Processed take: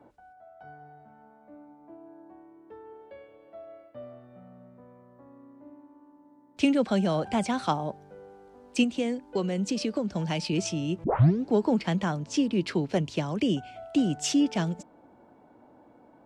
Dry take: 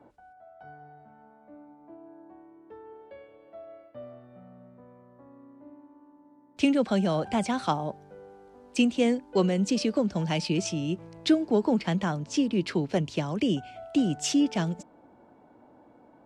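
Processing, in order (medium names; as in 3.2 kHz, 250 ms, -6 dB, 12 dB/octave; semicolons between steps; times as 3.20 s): 8.83–10.53 s: compression 4:1, threshold -25 dBFS, peak gain reduction 6.5 dB; 11.04 s: tape start 0.46 s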